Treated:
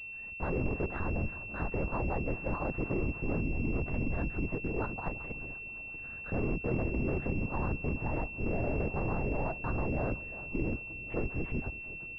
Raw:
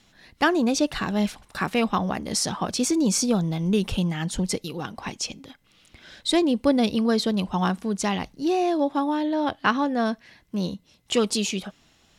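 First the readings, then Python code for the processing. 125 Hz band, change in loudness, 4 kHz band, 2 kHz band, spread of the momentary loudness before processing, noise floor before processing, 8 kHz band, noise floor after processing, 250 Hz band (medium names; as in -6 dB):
-3.0 dB, -10.0 dB, under -30 dB, -5.5 dB, 11 LU, -61 dBFS, under -40 dB, -43 dBFS, -13.0 dB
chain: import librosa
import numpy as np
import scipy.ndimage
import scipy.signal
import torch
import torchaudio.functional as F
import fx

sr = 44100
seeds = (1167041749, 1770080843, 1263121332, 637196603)

p1 = fx.tube_stage(x, sr, drive_db=23.0, bias=0.5)
p2 = fx.over_compress(p1, sr, threshold_db=-32.0, ratio=-0.5)
p3 = p1 + F.gain(torch.from_numpy(p2), -2.0).numpy()
p4 = fx.air_absorb(p3, sr, metres=160.0)
p5 = p4 + fx.echo_feedback(p4, sr, ms=356, feedback_pct=58, wet_db=-16.5, dry=0)
p6 = fx.lpc_vocoder(p5, sr, seeds[0], excitation='whisper', order=8)
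p7 = fx.pwm(p6, sr, carrier_hz=2700.0)
y = F.gain(torch.from_numpy(p7), -6.0).numpy()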